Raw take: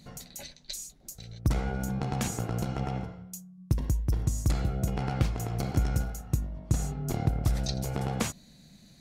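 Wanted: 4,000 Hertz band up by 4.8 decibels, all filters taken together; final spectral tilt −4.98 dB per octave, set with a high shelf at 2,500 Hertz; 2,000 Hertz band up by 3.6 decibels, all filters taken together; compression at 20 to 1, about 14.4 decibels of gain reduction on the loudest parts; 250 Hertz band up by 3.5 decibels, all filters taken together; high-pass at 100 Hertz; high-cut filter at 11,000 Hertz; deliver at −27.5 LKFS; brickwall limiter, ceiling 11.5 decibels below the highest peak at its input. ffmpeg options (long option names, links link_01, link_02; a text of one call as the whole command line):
ffmpeg -i in.wav -af "highpass=100,lowpass=11000,equalizer=frequency=250:width_type=o:gain=5.5,equalizer=frequency=2000:width_type=o:gain=4.5,highshelf=frequency=2500:gain=-4,equalizer=frequency=4000:width_type=o:gain=8,acompressor=threshold=-35dB:ratio=20,volume=16dB,alimiter=limit=-15dB:level=0:latency=1" out.wav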